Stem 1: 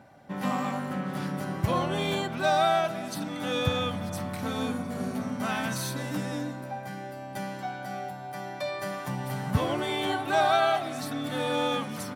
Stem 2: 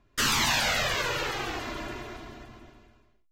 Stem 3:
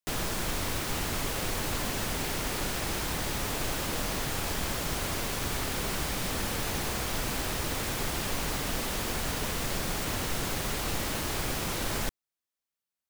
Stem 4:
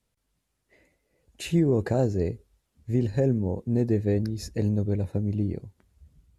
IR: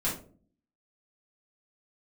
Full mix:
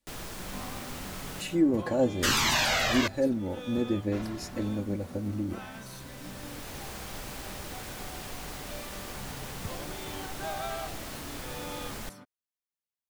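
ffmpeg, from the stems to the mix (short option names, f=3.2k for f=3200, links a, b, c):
-filter_complex "[0:a]adelay=100,volume=-13.5dB[a];[1:a]adelay=2050,volume=-0.5dB,asplit=3[b][c][d];[b]atrim=end=3.08,asetpts=PTS-STARTPTS,afade=t=out:st=3.076:d=0.004:c=hsin[e];[c]atrim=start=3.08:end=4.12,asetpts=PTS-STARTPTS,volume=0[f];[d]atrim=start=4.12,asetpts=PTS-STARTPTS,afade=t=in:d=0.004:c=hsin[g];[e][f][g]concat=n=3:v=0:a=1[h];[2:a]volume=-8.5dB[i];[3:a]lowshelf=f=190:g=-5.5,aecho=1:1:3.5:0.75,flanger=delay=2.3:depth=9.1:regen=74:speed=0.64:shape=triangular,volume=1dB,asplit=2[j][k];[k]apad=whole_len=577379[l];[i][l]sidechaincompress=threshold=-42dB:ratio=10:attack=16:release=1250[m];[a][h][m][j]amix=inputs=4:normalize=0"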